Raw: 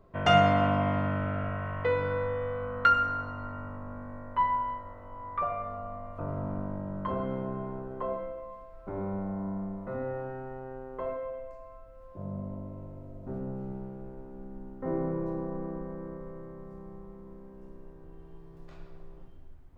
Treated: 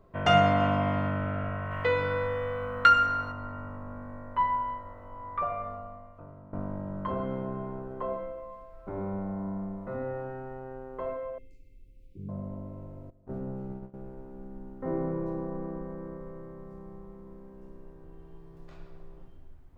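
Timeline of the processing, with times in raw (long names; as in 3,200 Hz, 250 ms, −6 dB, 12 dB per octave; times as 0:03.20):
0:00.60–0:01.10: high-shelf EQ 5,400 Hz +8 dB
0:01.71–0:03.32: high-shelf EQ 2,000 Hz +10 dB
0:05.68–0:06.53: fade out quadratic, to −16.5 dB
0:11.38–0:12.29: Chebyshev band-stop filter 440–2,200 Hz, order 5
0:13.10–0:13.94: noise gate −39 dBFS, range −17 dB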